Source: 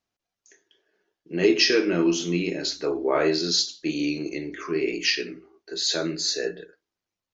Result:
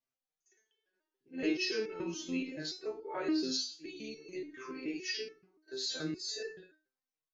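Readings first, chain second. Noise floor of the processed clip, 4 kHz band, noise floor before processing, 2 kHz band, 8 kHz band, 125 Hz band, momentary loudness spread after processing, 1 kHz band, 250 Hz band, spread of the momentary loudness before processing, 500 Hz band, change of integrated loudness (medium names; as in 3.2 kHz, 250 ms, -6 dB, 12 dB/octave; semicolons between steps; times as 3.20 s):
under -85 dBFS, -13.5 dB, under -85 dBFS, -13.5 dB, no reading, -16.0 dB, 13 LU, -13.0 dB, -11.5 dB, 13 LU, -15.0 dB, -13.0 dB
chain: pre-echo 54 ms -20 dB; resonator arpeggio 7 Hz 130–440 Hz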